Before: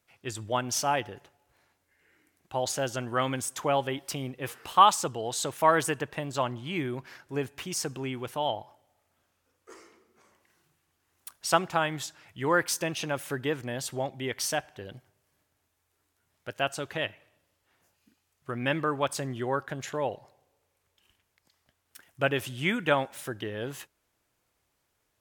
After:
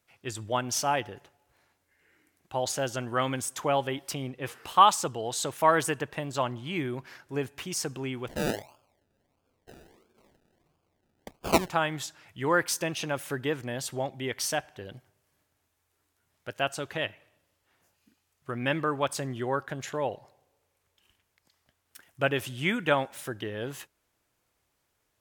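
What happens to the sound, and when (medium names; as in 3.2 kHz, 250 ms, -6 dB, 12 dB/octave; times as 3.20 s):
4.14–4.55 s: treble shelf 11 kHz -9.5 dB
8.28–11.70 s: decimation with a swept rate 32×, swing 60% 1.5 Hz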